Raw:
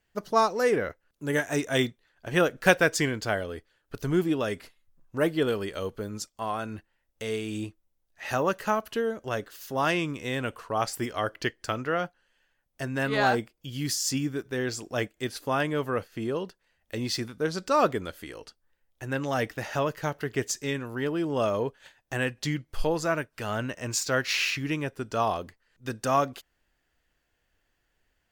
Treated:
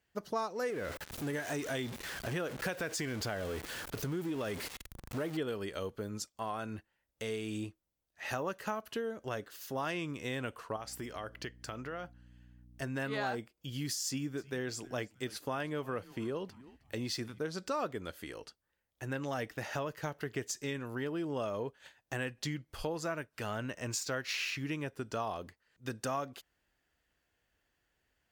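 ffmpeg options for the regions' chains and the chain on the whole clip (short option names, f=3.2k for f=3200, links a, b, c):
-filter_complex "[0:a]asettb=1/sr,asplit=3[a][b][c];[a]atrim=end=0.704[d];[b]atrim=start=0.7:end=5.37,asetpts=PTS-STARTPTS,afade=t=in:d=0.004:c=qsin,afade=t=out:st=4.666:d=0.004:c=qsin,aeval=exprs='val(0)+0.5*0.0251*sgn(val(0))':c=same,acompressor=threshold=-27dB:ratio=2:attack=3.2:release=140:knee=1:detection=peak[e];[c]atrim=start=5.366[f];[d][e]acrossfade=d=0.004:c1=hsin:c2=qsin[g];[g][f]acrossfade=d=0.004:c1=qsin:c2=hsin,asettb=1/sr,asplit=3[h][i][j];[h]atrim=end=10.764[k];[i]atrim=start=10.76:end=12.82,asetpts=PTS-STARTPTS,afade=t=in:d=0.004:c=qsin,afade=t=out:st=2.056:d=0.004:c=qsin,acompressor=threshold=-36dB:ratio=3:attack=3.2:release=140:knee=1:detection=peak,aeval=exprs='val(0)+0.00251*(sin(2*PI*60*n/s)+sin(2*PI*2*60*n/s)/2+sin(2*PI*3*60*n/s)/3+sin(2*PI*4*60*n/s)/4+sin(2*PI*5*60*n/s)/5)':c=same[l];[j]atrim=start=12.816[m];[k][l]acrossfade=d=0.004:c1=hsin:c2=qsin[n];[n][m]acrossfade=d=0.004:c1=qsin:c2=hsin,asettb=1/sr,asplit=3[o][p][q];[o]atrim=end=14.064[r];[p]atrim=start=14.06:end=17.39,asetpts=PTS-STARTPTS,afade=t=in:d=0.004:c=qsin,afade=t=out:st=3.326:d=0.004:c=qsin,highpass=56,asplit=4[s][t][u][v];[t]adelay=314,afreqshift=-130,volume=-22.5dB[w];[u]adelay=628,afreqshift=-260,volume=-30.9dB[x];[v]adelay=942,afreqshift=-390,volume=-39.3dB[y];[s][w][x][y]amix=inputs=4:normalize=0,atrim=end_sample=146853[z];[q]atrim=start=17.386[aa];[r][z]acrossfade=d=0.004:c1=hsin:c2=qsin[ab];[ab][aa]acrossfade=d=0.004:c1=qsin:c2=hsin,highpass=45,acompressor=threshold=-31dB:ratio=3,volume=-3.5dB"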